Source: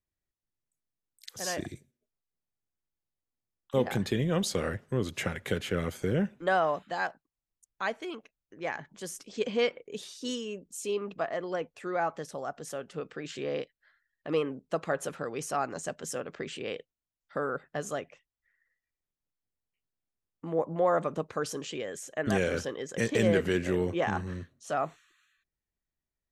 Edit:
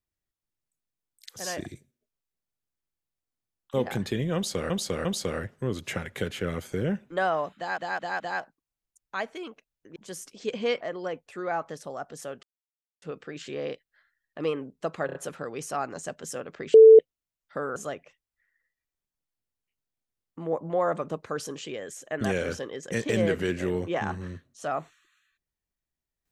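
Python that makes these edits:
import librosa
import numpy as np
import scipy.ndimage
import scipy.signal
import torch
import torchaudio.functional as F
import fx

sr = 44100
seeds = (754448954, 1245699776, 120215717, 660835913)

y = fx.edit(x, sr, fx.repeat(start_s=4.35, length_s=0.35, count=3),
    fx.stutter(start_s=6.87, slice_s=0.21, count=4),
    fx.cut(start_s=8.63, length_s=0.26),
    fx.cut(start_s=9.74, length_s=1.55),
    fx.insert_silence(at_s=12.91, length_s=0.59),
    fx.stutter(start_s=14.95, slice_s=0.03, count=4),
    fx.bleep(start_s=16.54, length_s=0.25, hz=443.0, db=-7.5),
    fx.cut(start_s=17.56, length_s=0.26), tone=tone)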